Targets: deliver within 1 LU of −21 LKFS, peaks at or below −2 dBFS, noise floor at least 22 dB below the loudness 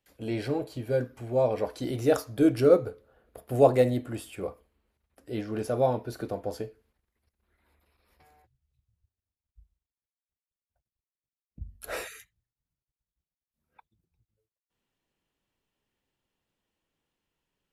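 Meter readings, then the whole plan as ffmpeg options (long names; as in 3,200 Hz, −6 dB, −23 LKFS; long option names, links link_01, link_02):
integrated loudness −27.5 LKFS; sample peak −7.0 dBFS; target loudness −21.0 LKFS
→ -af "volume=6.5dB,alimiter=limit=-2dB:level=0:latency=1"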